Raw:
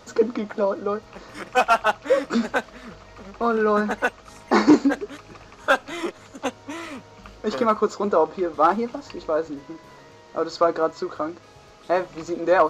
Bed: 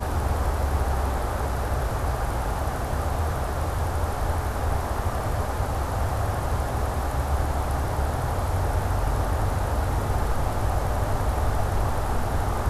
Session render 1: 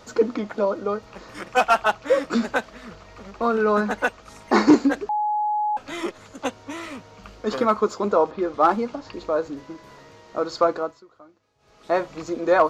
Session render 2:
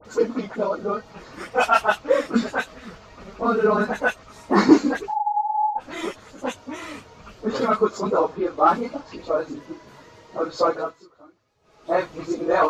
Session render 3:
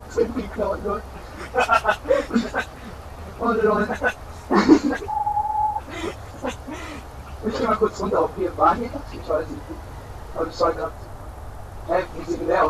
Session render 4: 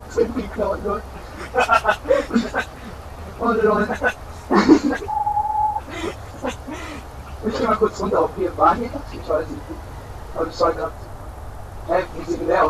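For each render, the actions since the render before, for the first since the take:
0:05.09–0:05.77: beep over 842 Hz −20 dBFS; 0:08.31–0:09.13: low-pass that shuts in the quiet parts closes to 3,000 Hz, open at −16.5 dBFS; 0:10.66–0:11.94: duck −21.5 dB, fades 0.36 s
random phases in long frames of 50 ms; all-pass dispersion highs, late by 52 ms, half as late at 1,900 Hz
mix in bed −12.5 dB
level +2 dB; brickwall limiter −1 dBFS, peak gain reduction 1.5 dB

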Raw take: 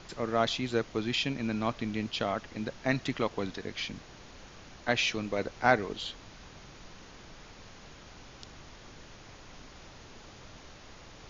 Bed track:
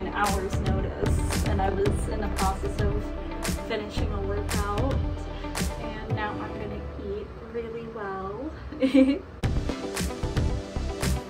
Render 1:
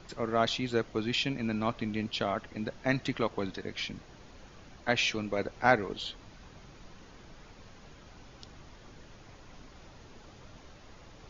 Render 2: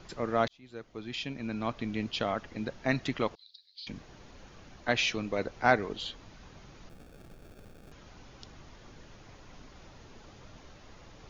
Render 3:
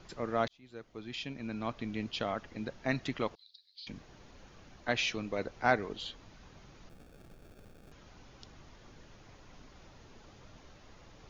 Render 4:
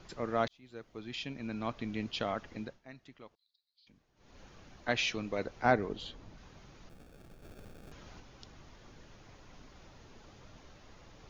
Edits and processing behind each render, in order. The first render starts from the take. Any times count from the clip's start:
broadband denoise 6 dB, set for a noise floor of −51 dBFS
0:00.48–0:02.01: fade in; 0:03.35–0:03.87: flat-topped band-pass 4,300 Hz, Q 4.7; 0:06.89–0:07.92: sample-rate reduction 1,000 Hz
level −3.5 dB
0:02.56–0:04.40: duck −19 dB, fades 0.25 s; 0:05.65–0:06.38: tilt shelving filter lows +4 dB, about 920 Hz; 0:07.43–0:08.20: clip gain +4 dB

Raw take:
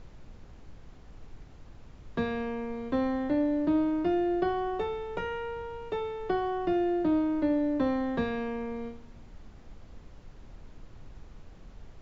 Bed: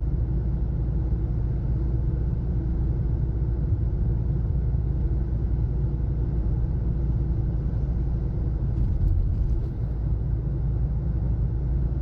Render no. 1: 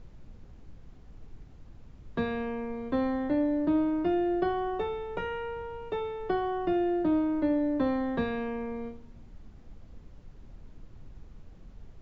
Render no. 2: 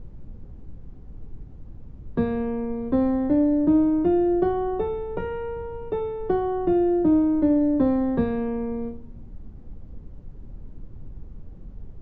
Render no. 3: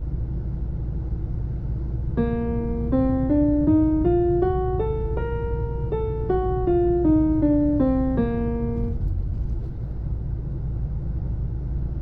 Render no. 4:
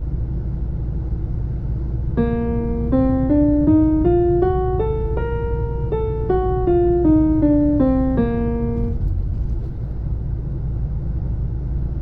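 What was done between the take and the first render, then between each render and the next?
broadband denoise 6 dB, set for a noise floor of −51 dBFS
tilt shelving filter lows +9 dB, about 1,100 Hz; notch filter 660 Hz, Q 16
mix in bed −2.5 dB
level +4 dB

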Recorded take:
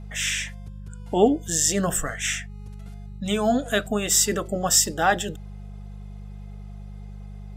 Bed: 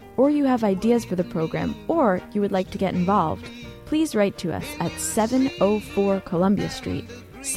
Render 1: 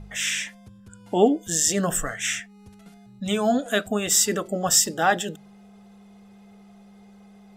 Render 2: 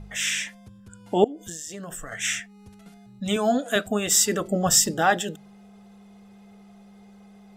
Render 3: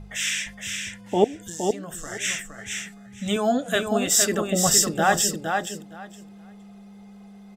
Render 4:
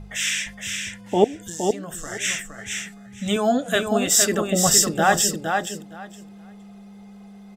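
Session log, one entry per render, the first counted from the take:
hum removal 50 Hz, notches 3
0:01.24–0:02.12: downward compressor 16 to 1, threshold −32 dBFS; 0:03.36–0:03.76: high-pass filter 190 Hz; 0:04.40–0:05.02: low-shelf EQ 220 Hz +8.5 dB
repeating echo 465 ms, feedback 16%, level −5 dB
level +2 dB

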